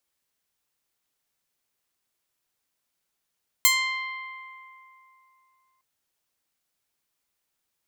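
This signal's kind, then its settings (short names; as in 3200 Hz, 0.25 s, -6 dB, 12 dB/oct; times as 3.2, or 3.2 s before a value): plucked string C6, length 2.16 s, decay 3.14 s, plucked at 0.21, bright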